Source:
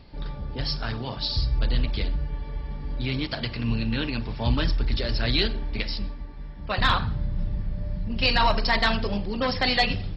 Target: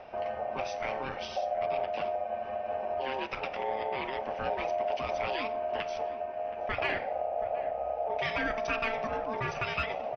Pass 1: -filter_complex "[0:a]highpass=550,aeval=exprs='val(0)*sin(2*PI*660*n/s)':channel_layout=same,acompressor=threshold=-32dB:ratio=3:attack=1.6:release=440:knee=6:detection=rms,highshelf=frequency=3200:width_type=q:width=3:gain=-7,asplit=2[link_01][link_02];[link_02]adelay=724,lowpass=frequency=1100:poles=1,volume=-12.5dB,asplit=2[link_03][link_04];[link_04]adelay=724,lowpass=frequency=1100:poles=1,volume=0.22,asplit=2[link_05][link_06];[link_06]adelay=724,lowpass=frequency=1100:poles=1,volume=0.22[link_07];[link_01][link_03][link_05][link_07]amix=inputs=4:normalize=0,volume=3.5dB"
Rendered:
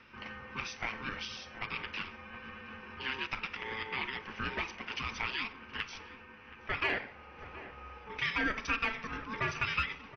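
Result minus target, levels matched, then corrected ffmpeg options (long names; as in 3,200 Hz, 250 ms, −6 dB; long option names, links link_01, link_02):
500 Hz band −12.5 dB
-filter_complex "[0:a]aeval=exprs='val(0)*sin(2*PI*660*n/s)':channel_layout=same,acompressor=threshold=-32dB:ratio=3:attack=1.6:release=440:knee=6:detection=rms,highshelf=frequency=3200:width_type=q:width=3:gain=-7,asplit=2[link_01][link_02];[link_02]adelay=724,lowpass=frequency=1100:poles=1,volume=-12.5dB,asplit=2[link_03][link_04];[link_04]adelay=724,lowpass=frequency=1100:poles=1,volume=0.22,asplit=2[link_05][link_06];[link_06]adelay=724,lowpass=frequency=1100:poles=1,volume=0.22[link_07];[link_01][link_03][link_05][link_07]amix=inputs=4:normalize=0,volume=3.5dB"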